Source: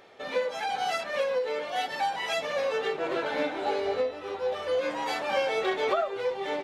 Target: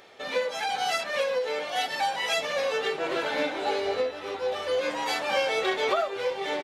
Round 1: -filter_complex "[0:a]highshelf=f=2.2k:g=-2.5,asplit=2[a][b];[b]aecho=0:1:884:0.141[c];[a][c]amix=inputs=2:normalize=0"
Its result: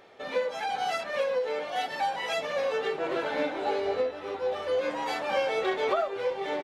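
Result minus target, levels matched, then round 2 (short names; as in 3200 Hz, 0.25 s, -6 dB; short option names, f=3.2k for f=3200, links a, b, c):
4000 Hz band -5.0 dB
-filter_complex "[0:a]highshelf=f=2.2k:g=7,asplit=2[a][b];[b]aecho=0:1:884:0.141[c];[a][c]amix=inputs=2:normalize=0"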